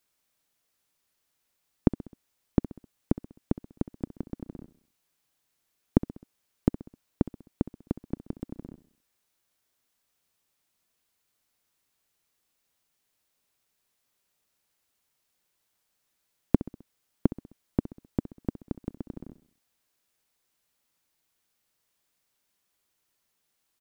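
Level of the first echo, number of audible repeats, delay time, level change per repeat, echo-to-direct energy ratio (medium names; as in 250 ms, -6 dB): -16.0 dB, 4, 65 ms, -6.0 dB, -15.0 dB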